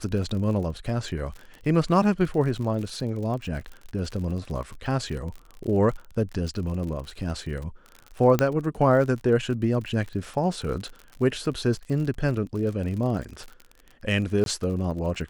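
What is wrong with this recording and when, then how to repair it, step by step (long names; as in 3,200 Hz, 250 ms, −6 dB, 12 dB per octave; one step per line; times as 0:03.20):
surface crackle 51 per second −33 dBFS
0:08.39: click −8 dBFS
0:14.44–0:14.46: drop-out 22 ms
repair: click removal
repair the gap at 0:14.44, 22 ms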